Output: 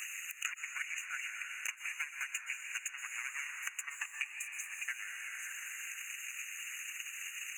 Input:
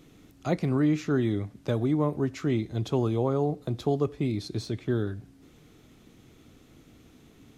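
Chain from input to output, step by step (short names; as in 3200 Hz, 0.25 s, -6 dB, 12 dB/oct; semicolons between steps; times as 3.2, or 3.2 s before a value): minimum comb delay 0.7 ms; steep high-pass 2000 Hz 36 dB/oct; high shelf 2600 Hz -9.5 dB; harmonic-percussive split harmonic -15 dB; bell 6200 Hz +8.5 dB 0.52 oct; compressor 6:1, threshold -57 dBFS, peak gain reduction 12.5 dB; delay with a stepping band-pass 0.264 s, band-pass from 2700 Hz, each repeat 0.7 oct, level -11.5 dB; transient shaper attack +11 dB, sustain -8 dB; brick-wall FIR band-stop 2900–6200 Hz; plate-style reverb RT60 2.4 s, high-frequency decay 0.8×, pre-delay 0.105 s, DRR 6 dB; three-band squash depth 100%; gain +17 dB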